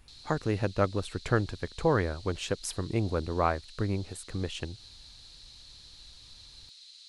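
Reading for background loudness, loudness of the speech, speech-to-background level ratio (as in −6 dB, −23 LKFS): −49.5 LKFS, −31.5 LKFS, 18.0 dB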